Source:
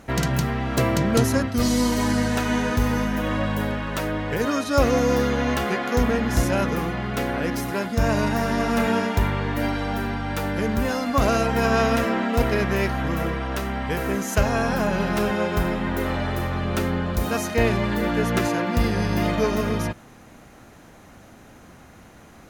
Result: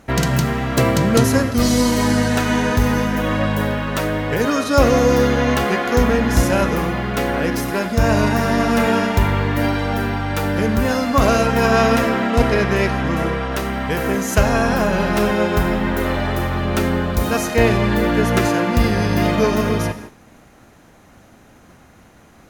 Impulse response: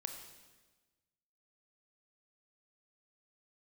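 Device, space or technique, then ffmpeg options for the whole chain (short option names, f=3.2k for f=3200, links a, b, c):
keyed gated reverb: -filter_complex "[0:a]asplit=3[a][b][c];[1:a]atrim=start_sample=2205[d];[b][d]afir=irnorm=-1:irlink=0[e];[c]apad=whole_len=991899[f];[e][f]sidechaingate=range=-33dB:threshold=-43dB:ratio=16:detection=peak,volume=3dB[g];[a][g]amix=inputs=2:normalize=0,asettb=1/sr,asplit=3[h][i][j];[h]atrim=end=12.304[k];[i]atrim=start=12.3:end=13.52,asetpts=PTS-STARTPTS,afade=t=in:d=0.004:c=qsin,afade=t=out:st=1.216:d=0.004:c=qsin,lowpass=10k[l];[j]atrim=start=13.516[m];[k][l]acrossfade=d=0.004:c1=hsin:c2=qsin[n];[n][m]acrossfade=d=0.004:c1=qsin:c2=hsin,volume=-1dB"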